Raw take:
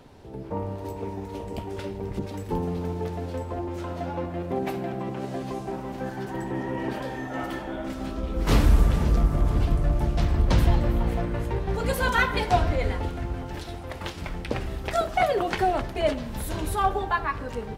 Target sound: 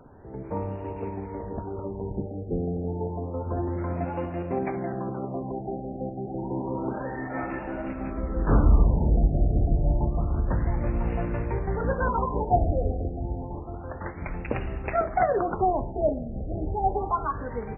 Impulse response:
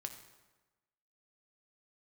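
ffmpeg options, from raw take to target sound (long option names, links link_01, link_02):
-filter_complex "[0:a]asettb=1/sr,asplit=3[link_01][link_02][link_03];[link_01]atrim=end=3.464[link_04];[link_02]atrim=start=3.46:end=4.05,asetpts=PTS-STARTPTS,afade=type=in:duration=0.004:curve=qsin,afade=type=out:start_time=0.586:duration=0.004:curve=qsin,equalizer=frequency=130:width=0.7:gain=7[link_05];[link_03]atrim=start=4.046[link_06];[link_04][link_05]acrossfade=duration=0.004:curve1=hsin:curve2=qsin[link_07];[link_07][link_06]acrossfade=duration=0.004:curve1=qsin:curve2=hsin,asettb=1/sr,asplit=3[link_08][link_09][link_10];[link_08]atrim=end=10.064[link_11];[link_09]atrim=start=10.06:end=11.87,asetpts=PTS-STARTPTS,afade=type=in:duration=0.004:curve=qsin,afade=type=out:start_time=1.806:duration=0.004:curve=qsin,acompressor=threshold=-21dB:ratio=6[link_12];[link_10]atrim=start=11.866[link_13];[link_11][link_12]acrossfade=duration=0.004:curve1=hsin:curve2=qsin[link_14];[link_14][link_13]acrossfade=duration=0.004:curve1=qsin:curve2=hsin,afftfilt=real='re*lt(b*sr/1024,790*pow(2900/790,0.5+0.5*sin(2*PI*0.29*pts/sr)))':imag='im*lt(b*sr/1024,790*pow(2900/790,0.5+0.5*sin(2*PI*0.29*pts/sr)))':win_size=1024:overlap=0.75"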